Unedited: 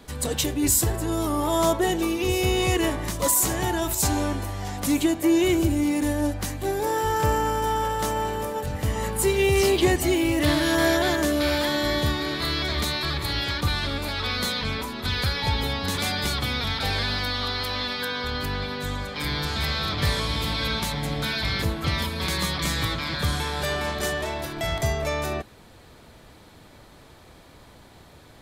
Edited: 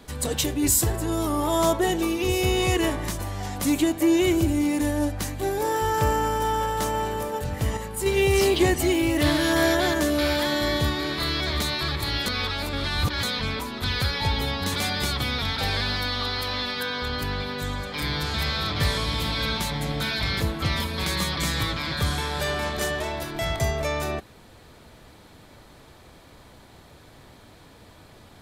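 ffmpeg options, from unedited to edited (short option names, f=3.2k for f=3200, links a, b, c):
-filter_complex "[0:a]asplit=6[a][b][c][d][e][f];[a]atrim=end=3.192[g];[b]atrim=start=4.408:end=8.992[h];[c]atrim=start=8.988:end=9.282,asetpts=PTS-STARTPTS,volume=-6dB[i];[d]atrim=start=9.278:end=13.482[j];[e]atrim=start=13.478:end=14.452,asetpts=PTS-STARTPTS,areverse[k];[f]atrim=start=14.448[l];[g][h]acrossfade=d=0.004:c1=hsin:c2=hsin[m];[m][i]acrossfade=d=0.004:c1=hsin:c2=hsin[n];[n][j]acrossfade=d=0.004:c1=hsin:c2=hsin[o];[o][k]acrossfade=d=0.004:c1=hsin:c2=hsin[p];[p][l]acrossfade=d=0.004:c1=hsin:c2=hsin"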